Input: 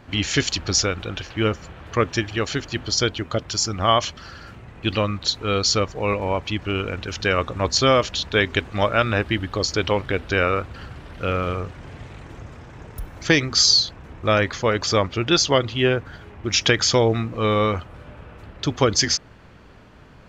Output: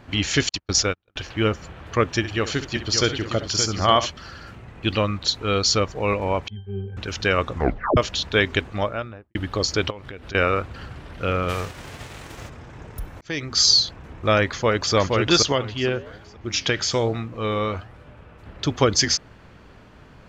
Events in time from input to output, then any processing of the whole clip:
0.49–1.16 s: gate -24 dBFS, range -46 dB
2.17–4.07 s: multi-tap echo 66/573/842/859 ms -13/-8/-18/-19.5 dB
6.48–6.97 s: pitch-class resonator G, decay 0.28 s
7.52 s: tape stop 0.45 s
8.51–9.35 s: studio fade out
9.90–10.35 s: compression 8:1, threshold -33 dBFS
11.48–12.48 s: formants flattened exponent 0.6
13.21–13.68 s: fade in
14.50–14.95 s: echo throw 470 ms, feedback 30%, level -2.5 dB
15.52–18.46 s: flange 1.2 Hz, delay 5.9 ms, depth 8.2 ms, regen +90%

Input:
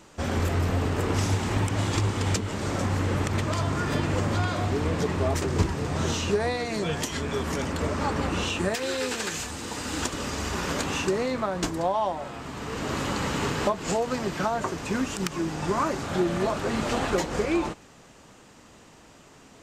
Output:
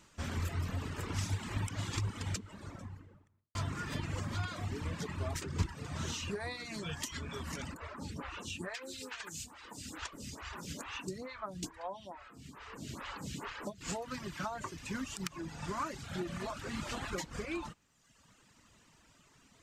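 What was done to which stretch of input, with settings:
2.02–3.55 s: studio fade out
7.74–13.81 s: lamp-driven phase shifter 2.3 Hz
whole clip: reverb removal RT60 1.1 s; peaking EQ 470 Hz -9 dB 1.7 oct; band-stop 770 Hz, Q 14; trim -7 dB

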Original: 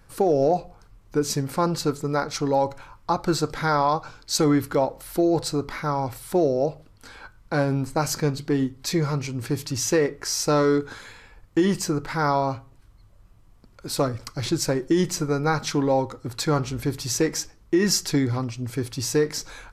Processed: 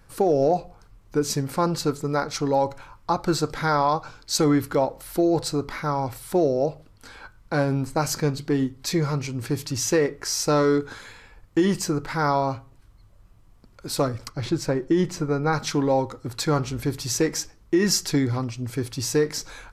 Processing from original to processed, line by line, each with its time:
14.29–15.53 s: treble shelf 4.2 kHz -11.5 dB

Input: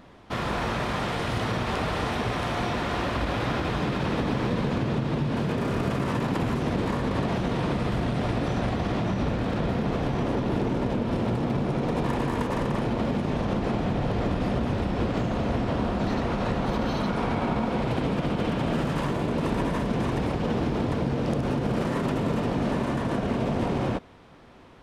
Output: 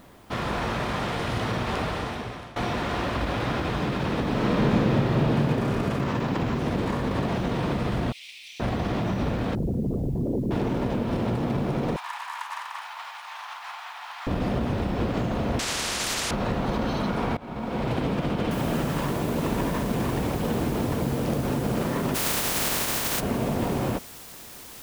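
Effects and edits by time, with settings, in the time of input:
1.80–2.56 s: fade out linear, to -19 dB
4.29–5.33 s: reverb throw, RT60 2.3 s, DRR -2.5 dB
6.01–6.59 s: low-pass 7.1 kHz 24 dB/octave
8.12–8.60 s: steep high-pass 2.2 kHz 72 dB/octave
9.55–10.51 s: resonances exaggerated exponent 3
11.96–14.27 s: steep high-pass 860 Hz 48 dB/octave
15.59–16.31 s: spectrum-flattening compressor 10:1
17.37–17.87 s: fade in, from -22.5 dB
18.51 s: noise floor step -63 dB -44 dB
22.14–23.19 s: spectral contrast reduction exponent 0.29

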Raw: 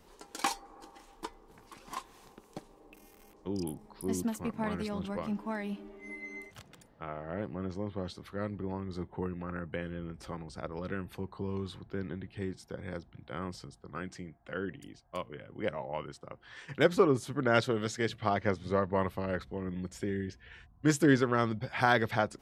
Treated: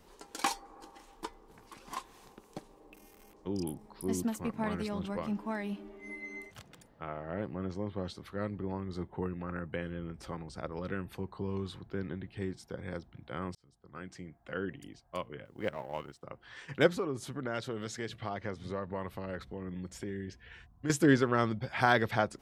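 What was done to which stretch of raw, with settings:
13.55–14.40 s: fade in
15.45–16.23 s: companding laws mixed up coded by A
16.90–20.90 s: compression 2:1, threshold -38 dBFS

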